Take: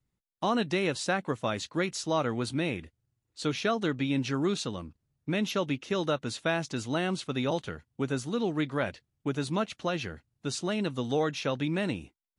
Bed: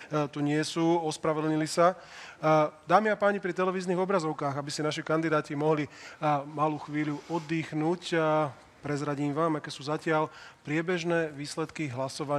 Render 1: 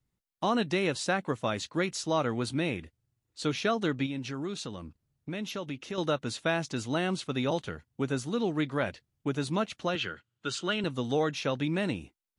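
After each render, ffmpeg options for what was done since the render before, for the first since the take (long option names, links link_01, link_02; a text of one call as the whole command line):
ffmpeg -i in.wav -filter_complex "[0:a]asettb=1/sr,asplit=3[link_01][link_02][link_03];[link_01]atrim=end=4.064[link_04];[link_02]atrim=start=4.06:end=5.98,asetpts=PTS-STARTPTS,afade=type=in:duration=0.004:curve=qsin,afade=type=out:start_time=1.916:duration=0.004:curve=qsin,acompressor=threshold=-37dB:ratio=2:attack=3.2:release=140:knee=1:detection=peak[link_05];[link_03]atrim=start=5.976[link_06];[link_04][link_05]acrossfade=duration=0.004:curve1=hsin:curve2=qsin[link_07];[link_07][link_06]acrossfade=duration=0.004:curve1=qsin:curve2=hsin,asettb=1/sr,asplit=3[link_08][link_09][link_10];[link_08]atrim=end=9.954[link_11];[link_09]atrim=start=9.95:end=10.84,asetpts=PTS-STARTPTS,afade=type=in:duration=0.004:curve=qsin,afade=type=out:start_time=0.886:duration=0.004:curve=qsin,highpass=frequency=110:width=0.5412,highpass=frequency=110:width=1.3066,equalizer=frequency=150:width_type=q:width=4:gain=-8,equalizer=frequency=250:width_type=q:width=4:gain=-7,equalizer=frequency=730:width_type=q:width=4:gain=-7,equalizer=frequency=1400:width_type=q:width=4:gain=10,equalizer=frequency=3100:width_type=q:width=4:gain=10,equalizer=frequency=5600:width_type=q:width=4:gain=-5,lowpass=frequency=8100:width=0.5412,lowpass=frequency=8100:width=1.3066[link_12];[link_10]atrim=start=10.836[link_13];[link_11][link_12]acrossfade=duration=0.004:curve1=hsin:curve2=qsin[link_14];[link_14][link_13]acrossfade=duration=0.004:curve1=qsin:curve2=hsin" out.wav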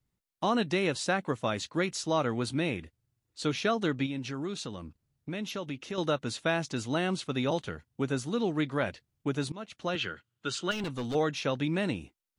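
ffmpeg -i in.wav -filter_complex "[0:a]asettb=1/sr,asplit=3[link_01][link_02][link_03];[link_01]atrim=end=10.714[link_04];[link_02]atrim=start=10.71:end=11.15,asetpts=PTS-STARTPTS,afade=type=in:duration=0.004:curve=qsin,afade=type=out:start_time=0.436:duration=0.004:curve=qsin,asoftclip=type=hard:threshold=-30dB[link_05];[link_03]atrim=start=11.146[link_06];[link_04][link_05]acrossfade=duration=0.004:curve1=hsin:curve2=qsin[link_07];[link_07][link_06]acrossfade=duration=0.004:curve1=qsin:curve2=hsin,asplit=2[link_08][link_09];[link_08]atrim=end=9.52,asetpts=PTS-STARTPTS,afade=type=out:start_time=9.516:duration=0.004:curve=hsin:silence=0.0891251[link_10];[link_09]atrim=start=9.52,asetpts=PTS-STARTPTS,afade=type=in:duration=0.46:silence=0.0891251[link_11];[link_10][link_11]concat=n=2:v=0:a=1" out.wav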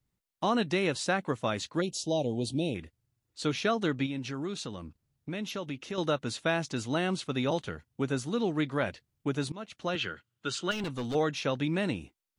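ffmpeg -i in.wav -filter_complex "[0:a]asplit=3[link_01][link_02][link_03];[link_01]afade=type=out:start_time=1.8:duration=0.02[link_04];[link_02]asuperstop=centerf=1500:order=8:qfactor=0.73,afade=type=in:start_time=1.8:duration=0.02,afade=type=out:start_time=2.74:duration=0.02[link_05];[link_03]afade=type=in:start_time=2.74:duration=0.02[link_06];[link_04][link_05][link_06]amix=inputs=3:normalize=0" out.wav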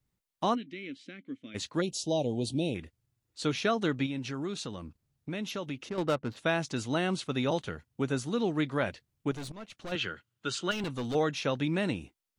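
ffmpeg -i in.wav -filter_complex "[0:a]asplit=3[link_01][link_02][link_03];[link_01]afade=type=out:start_time=0.54:duration=0.02[link_04];[link_02]asplit=3[link_05][link_06][link_07];[link_05]bandpass=frequency=270:width_type=q:width=8,volume=0dB[link_08];[link_06]bandpass=frequency=2290:width_type=q:width=8,volume=-6dB[link_09];[link_07]bandpass=frequency=3010:width_type=q:width=8,volume=-9dB[link_10];[link_08][link_09][link_10]amix=inputs=3:normalize=0,afade=type=in:start_time=0.54:duration=0.02,afade=type=out:start_time=1.54:duration=0.02[link_11];[link_03]afade=type=in:start_time=1.54:duration=0.02[link_12];[link_04][link_11][link_12]amix=inputs=3:normalize=0,asplit=3[link_13][link_14][link_15];[link_13]afade=type=out:start_time=5.88:duration=0.02[link_16];[link_14]adynamicsmooth=sensitivity=5:basefreq=650,afade=type=in:start_time=5.88:duration=0.02,afade=type=out:start_time=6.36:duration=0.02[link_17];[link_15]afade=type=in:start_time=6.36:duration=0.02[link_18];[link_16][link_17][link_18]amix=inputs=3:normalize=0,asettb=1/sr,asplit=3[link_19][link_20][link_21];[link_19]atrim=end=9.314[link_22];[link_20]atrim=start=9.31:end=9.92,asetpts=PTS-STARTPTS,afade=type=in:duration=0.004:curve=qsin,afade=type=out:start_time=0.606:duration=0.004:curve=qsin,aeval=exprs='(tanh(70.8*val(0)+0.35)-tanh(0.35))/70.8':channel_layout=same[link_23];[link_21]atrim=start=9.916[link_24];[link_22][link_23]acrossfade=duration=0.004:curve1=hsin:curve2=qsin[link_25];[link_25][link_24]acrossfade=duration=0.004:curve1=qsin:curve2=hsin" out.wav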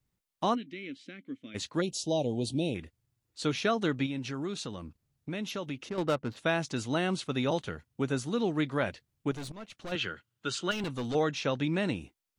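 ffmpeg -i in.wav -filter_complex "[0:a]asettb=1/sr,asplit=3[link_01][link_02][link_03];[link_01]atrim=end=11.104[link_04];[link_02]atrim=start=11.1:end=11.92,asetpts=PTS-STARTPTS,afade=type=in:duration=0.004:curve=qsin,afade=type=out:start_time=0.816:duration=0.004:curve=qsin,lowpass=frequency=9000:width=0.5412,lowpass=frequency=9000:width=1.3066[link_05];[link_03]atrim=start=11.916[link_06];[link_04][link_05]acrossfade=duration=0.004:curve1=hsin:curve2=qsin[link_07];[link_07][link_06]acrossfade=duration=0.004:curve1=qsin:curve2=hsin" out.wav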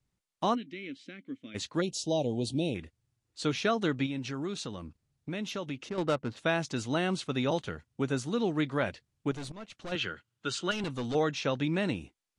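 ffmpeg -i in.wav -af "lowpass=frequency=10000:width=0.5412,lowpass=frequency=10000:width=1.3066" out.wav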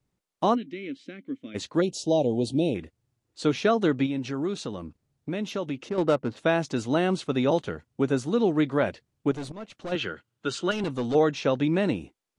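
ffmpeg -i in.wav -af "equalizer=frequency=420:width=0.43:gain=7.5" out.wav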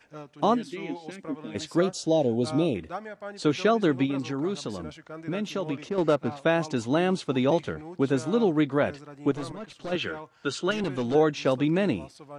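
ffmpeg -i in.wav -i bed.wav -filter_complex "[1:a]volume=-13.5dB[link_01];[0:a][link_01]amix=inputs=2:normalize=0" out.wav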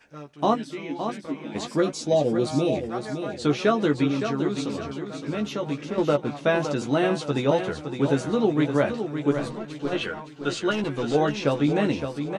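ffmpeg -i in.wav -filter_complex "[0:a]asplit=2[link_01][link_02];[link_02]adelay=14,volume=-5dB[link_03];[link_01][link_03]amix=inputs=2:normalize=0,aecho=1:1:564|1128|1692|2256:0.398|0.155|0.0606|0.0236" out.wav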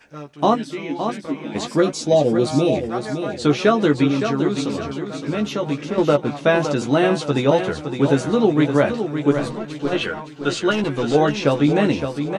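ffmpeg -i in.wav -af "volume=5.5dB,alimiter=limit=-3dB:level=0:latency=1" out.wav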